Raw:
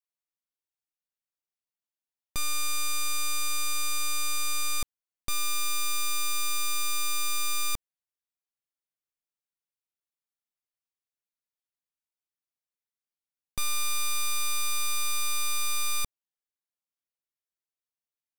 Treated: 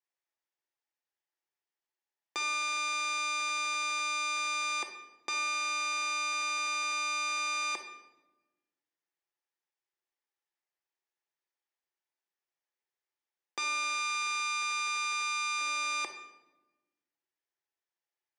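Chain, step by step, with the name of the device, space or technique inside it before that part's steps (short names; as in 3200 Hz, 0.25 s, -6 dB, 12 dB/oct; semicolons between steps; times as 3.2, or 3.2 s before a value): phone speaker on a table (speaker cabinet 340–6400 Hz, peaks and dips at 360 Hz +7 dB, 840 Hz +7 dB, 1800 Hz +7 dB, 4100 Hz -4 dB); 13.92–15.61 notches 60/120/180/240/300/360/420/480/540/600 Hz; shoebox room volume 540 m³, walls mixed, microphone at 0.77 m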